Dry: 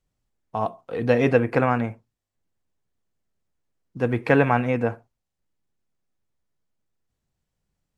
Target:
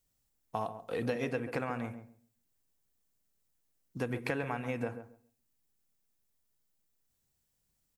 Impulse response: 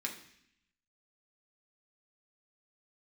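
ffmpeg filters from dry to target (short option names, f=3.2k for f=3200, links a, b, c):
-filter_complex "[0:a]aemphasis=mode=production:type=75kf,acompressor=threshold=-26dB:ratio=12,asplit=2[a][b];[b]adelay=137,lowpass=f=1k:p=1,volume=-9dB,asplit=2[c][d];[d]adelay=137,lowpass=f=1k:p=1,volume=0.2,asplit=2[e][f];[f]adelay=137,lowpass=f=1k:p=1,volume=0.2[g];[a][c][e][g]amix=inputs=4:normalize=0,asplit=2[h][i];[1:a]atrim=start_sample=2205[j];[i][j]afir=irnorm=-1:irlink=0,volume=-19.5dB[k];[h][k]amix=inputs=2:normalize=0,volume=-5dB"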